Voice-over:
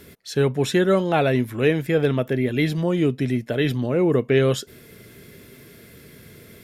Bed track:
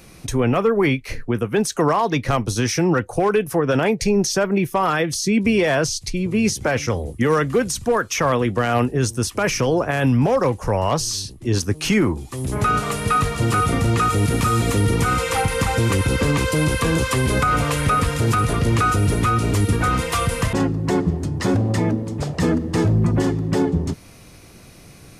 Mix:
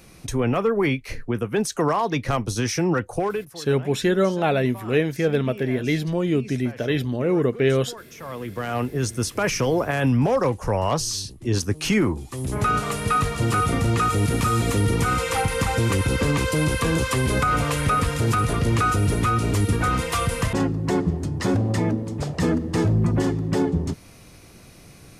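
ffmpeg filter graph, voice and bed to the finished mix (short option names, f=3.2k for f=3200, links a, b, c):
-filter_complex "[0:a]adelay=3300,volume=-1.5dB[a];[1:a]volume=15dB,afade=t=out:st=3.14:d=0.41:silence=0.133352,afade=t=in:st=8.18:d=1.07:silence=0.11885[b];[a][b]amix=inputs=2:normalize=0"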